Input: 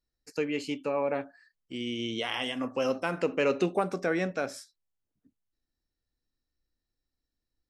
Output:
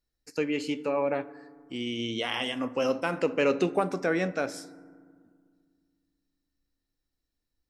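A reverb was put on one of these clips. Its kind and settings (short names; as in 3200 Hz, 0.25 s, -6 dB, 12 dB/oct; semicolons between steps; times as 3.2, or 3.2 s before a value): FDN reverb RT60 1.9 s, low-frequency decay 1.55×, high-frequency decay 0.35×, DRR 16 dB; gain +1.5 dB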